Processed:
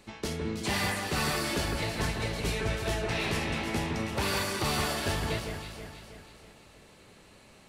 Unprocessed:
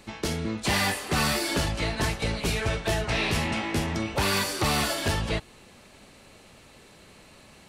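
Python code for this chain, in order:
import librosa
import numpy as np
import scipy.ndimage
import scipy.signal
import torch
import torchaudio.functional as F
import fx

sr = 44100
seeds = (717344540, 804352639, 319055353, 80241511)

y = fx.peak_eq(x, sr, hz=420.0, db=2.5, octaves=0.2)
y = fx.echo_alternate(y, sr, ms=161, hz=2300.0, feedback_pct=69, wet_db=-4)
y = y * 10.0 ** (-5.5 / 20.0)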